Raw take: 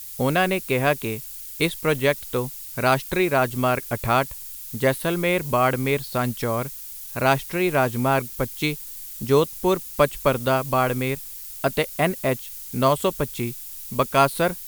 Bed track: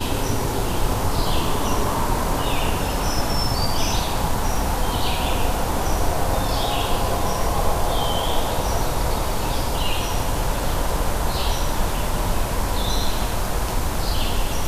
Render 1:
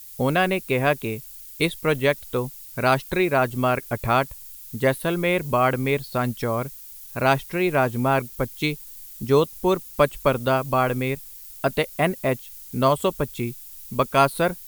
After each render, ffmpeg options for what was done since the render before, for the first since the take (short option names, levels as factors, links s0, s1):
-af "afftdn=nr=6:nf=-37"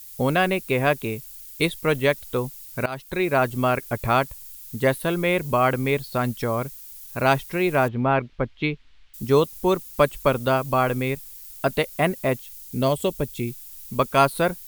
-filter_complex "[0:a]asettb=1/sr,asplit=3[s0][s1][s2];[s0]atrim=end=7.884[s3];[s1]atrim=start=7.88:end=9.14,asetpts=PTS-STARTPTS,afade=t=in:d=0.004:c=qsin,afade=t=out:st=1.256:d=0.004:c=qsin,lowpass=f=3300:w=0.5412,lowpass=f=3300:w=1.3066[s4];[s2]atrim=start=9.136[s5];[s3][s4]acrossfade=d=0.004:c1=hsin:c2=qsin[s6];[s6][s5]acrossfade=d=0.004:c1=qsin:c2=hsin,asettb=1/sr,asplit=3[s7][s8][s9];[s7]atrim=end=12.534[s10];[s8]atrim=start=12.53:end=13.48,asetpts=PTS-STARTPTS,afade=t=in:d=0.004:c=qsin,afade=t=out:st=0.946:d=0.004:c=qsin,equalizer=f=1200:w=1.6:g=-10.5[s11];[s9]atrim=start=13.476[s12];[s10][s11]acrossfade=d=0.004:c1=hsin:c2=qsin[s13];[s13][s12]acrossfade=d=0.004:c1=qsin:c2=hsin,asplit=2[s14][s15];[s14]atrim=end=2.86,asetpts=PTS-STARTPTS,afade=t=out:st=2.856:d=0.004:c=hsin:silence=0.105925[s16];[s15]atrim=start=2.86,asetpts=PTS-STARTPTS,afade=t=in:d=0.48:silence=0.105925[s17];[s16][s17]concat=n=2:v=0:a=1"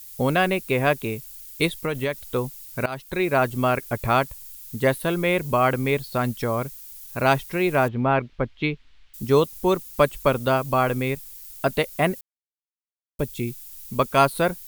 -filter_complex "[0:a]asettb=1/sr,asplit=3[s0][s1][s2];[s0]atrim=end=1.724[s3];[s1]atrim=start=1.72:end=2.33,asetpts=PTS-STARTPTS,afade=t=in:d=0.004:c=qsin,afade=t=out:st=0.606:d=0.004:c=qsin,acompressor=threshold=0.1:ratio=6:attack=3.2:release=140:knee=1:detection=peak[s4];[s2]atrim=start=2.326[s5];[s3][s4]acrossfade=d=0.004:c1=hsin:c2=qsin[s6];[s6][s5]acrossfade=d=0.004:c1=qsin:c2=hsin,asplit=3[s7][s8][s9];[s7]atrim=end=12.21,asetpts=PTS-STARTPTS,afade=t=out:st=12.206:d=0.004:c=hsin[s10];[s8]atrim=start=12.21:end=13.19,asetpts=PTS-STARTPTS,volume=0[s11];[s9]atrim=start=13.19,asetpts=PTS-STARTPTS,afade=t=in:d=0.004:c=hsin[s12];[s10][s11][s12]concat=n=3:v=0:a=1"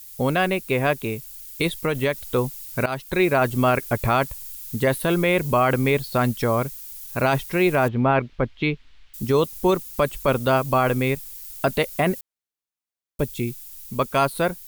-af "dynaudnorm=f=190:g=17:m=2,alimiter=limit=0.335:level=0:latency=1:release=20"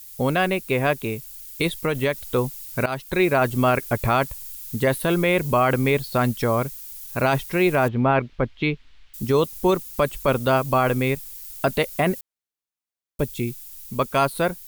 -af anull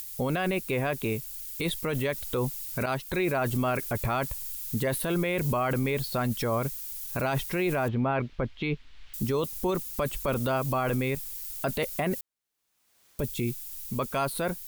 -af "alimiter=limit=0.112:level=0:latency=1:release=13,acompressor=mode=upward:threshold=0.0158:ratio=2.5"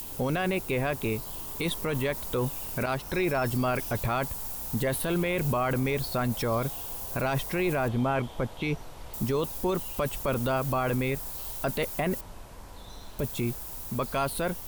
-filter_complex "[1:a]volume=0.0708[s0];[0:a][s0]amix=inputs=2:normalize=0"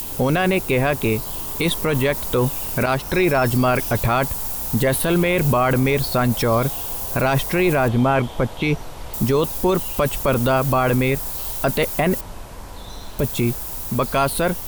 -af "volume=2.99"